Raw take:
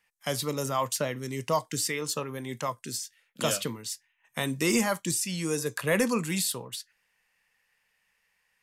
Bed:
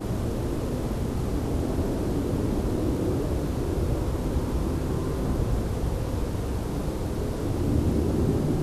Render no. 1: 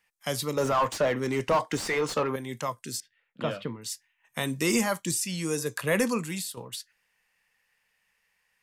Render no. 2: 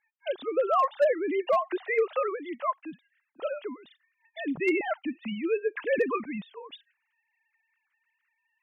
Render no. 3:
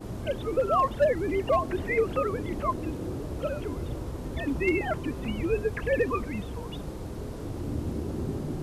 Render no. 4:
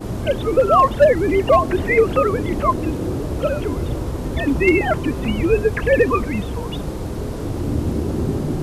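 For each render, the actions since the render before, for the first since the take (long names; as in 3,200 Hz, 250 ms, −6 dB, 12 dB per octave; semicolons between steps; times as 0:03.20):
0:00.57–0:02.36: mid-hump overdrive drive 23 dB, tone 1,100 Hz, clips at −14 dBFS; 0:03.00–0:03.82: high-frequency loss of the air 420 metres; 0:06.08–0:06.57: fade out, to −10.5 dB
three sine waves on the formant tracks; hard clipping −16.5 dBFS, distortion −22 dB
mix in bed −8 dB
level +10.5 dB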